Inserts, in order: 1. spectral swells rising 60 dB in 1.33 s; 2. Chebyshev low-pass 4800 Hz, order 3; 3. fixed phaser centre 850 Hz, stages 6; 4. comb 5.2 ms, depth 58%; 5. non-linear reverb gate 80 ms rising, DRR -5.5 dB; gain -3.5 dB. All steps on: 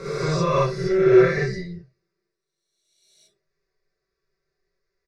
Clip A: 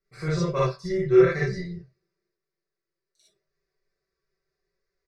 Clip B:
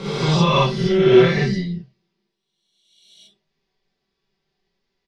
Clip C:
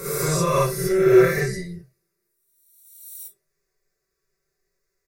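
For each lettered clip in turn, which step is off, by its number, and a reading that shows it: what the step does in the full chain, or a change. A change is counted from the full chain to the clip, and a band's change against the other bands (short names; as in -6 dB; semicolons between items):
1, 1 kHz band -2.5 dB; 3, 4 kHz band +8.0 dB; 2, momentary loudness spread change +7 LU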